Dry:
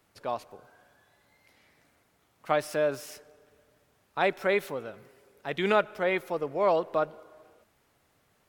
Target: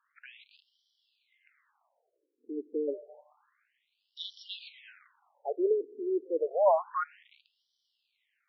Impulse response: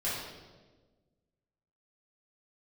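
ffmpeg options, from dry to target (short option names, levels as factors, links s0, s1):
-af "acrusher=bits=9:dc=4:mix=0:aa=0.000001,afftfilt=real='re*between(b*sr/1024,330*pow(4200/330,0.5+0.5*sin(2*PI*0.29*pts/sr))/1.41,330*pow(4200/330,0.5+0.5*sin(2*PI*0.29*pts/sr))*1.41)':imag='im*between(b*sr/1024,330*pow(4200/330,0.5+0.5*sin(2*PI*0.29*pts/sr))/1.41,330*pow(4200/330,0.5+0.5*sin(2*PI*0.29*pts/sr))*1.41)':win_size=1024:overlap=0.75,volume=1.33"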